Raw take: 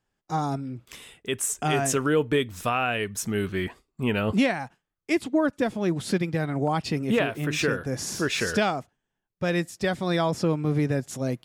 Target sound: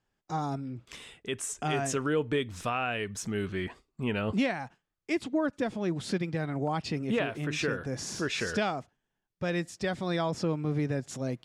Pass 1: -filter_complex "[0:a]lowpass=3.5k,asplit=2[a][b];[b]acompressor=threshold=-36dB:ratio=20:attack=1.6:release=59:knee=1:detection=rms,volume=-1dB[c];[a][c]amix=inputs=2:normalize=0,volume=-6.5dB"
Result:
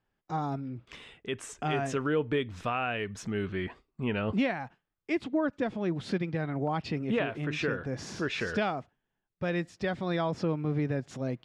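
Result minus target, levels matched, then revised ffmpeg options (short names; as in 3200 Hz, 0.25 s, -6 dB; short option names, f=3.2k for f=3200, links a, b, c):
8000 Hz band -9.0 dB
-filter_complex "[0:a]lowpass=7.7k,asplit=2[a][b];[b]acompressor=threshold=-36dB:ratio=20:attack=1.6:release=59:knee=1:detection=rms,volume=-1dB[c];[a][c]amix=inputs=2:normalize=0,volume=-6.5dB"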